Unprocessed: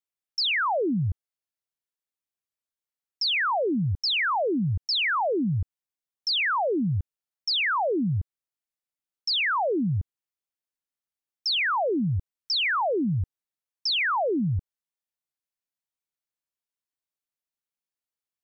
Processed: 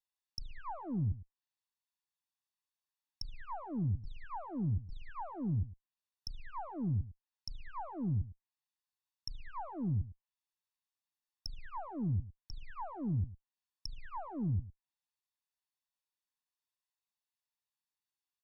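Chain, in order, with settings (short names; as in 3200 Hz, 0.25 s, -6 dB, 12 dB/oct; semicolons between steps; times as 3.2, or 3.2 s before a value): minimum comb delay 1.1 ms; ten-band EQ 500 Hz -11 dB, 1000 Hz +9 dB, 4000 Hz +7 dB; echo 0.106 s -16.5 dB; treble ducked by the level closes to 390 Hz, closed at -28.5 dBFS; gain -5.5 dB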